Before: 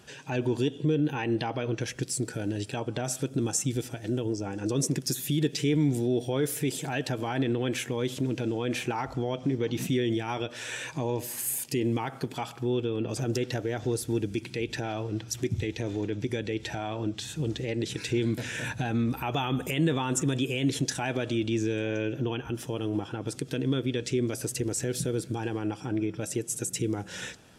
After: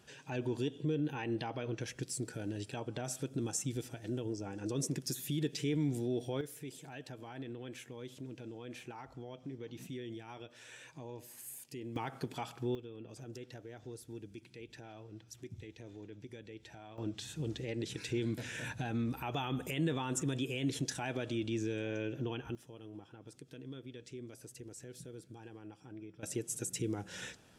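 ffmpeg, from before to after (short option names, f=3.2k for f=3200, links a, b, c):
-af "asetnsamples=n=441:p=0,asendcmd='6.41 volume volume -17dB;11.96 volume volume -7dB;12.75 volume volume -18.5dB;16.98 volume volume -8dB;22.55 volume volume -19.5dB;26.23 volume volume -7dB',volume=-8.5dB"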